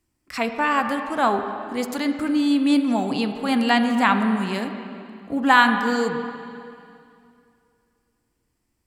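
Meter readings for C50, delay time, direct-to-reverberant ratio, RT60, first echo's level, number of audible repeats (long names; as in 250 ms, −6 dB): 7.0 dB, no echo audible, 6.0 dB, 2.5 s, no echo audible, no echo audible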